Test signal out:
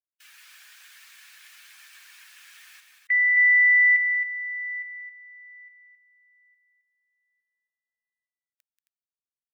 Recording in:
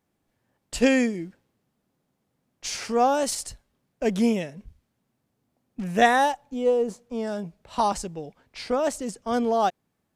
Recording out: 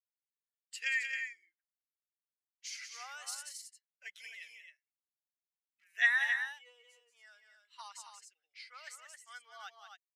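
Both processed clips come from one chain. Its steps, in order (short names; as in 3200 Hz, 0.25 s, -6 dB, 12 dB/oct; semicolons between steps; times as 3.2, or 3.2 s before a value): per-bin expansion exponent 1.5; ladder high-pass 1700 Hz, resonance 65%; loudspeakers at several distances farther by 63 m -8 dB, 92 m -7 dB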